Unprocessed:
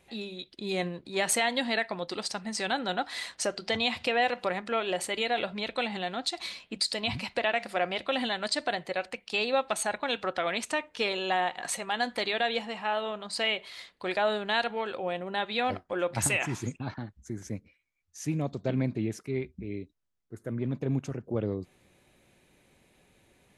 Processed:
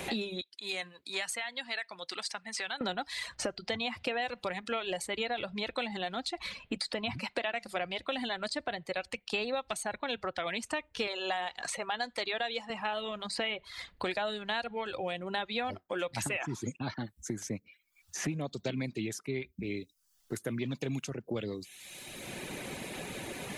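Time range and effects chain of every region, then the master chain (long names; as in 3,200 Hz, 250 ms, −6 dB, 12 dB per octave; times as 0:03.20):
0:00.41–0:02.81: low-pass filter 10,000 Hz + first difference
0:11.07–0:12.70: low-pass filter 8,200 Hz + bass and treble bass −15 dB, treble +6 dB
whole clip: reverb reduction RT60 0.54 s; multiband upward and downward compressor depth 100%; level −4.5 dB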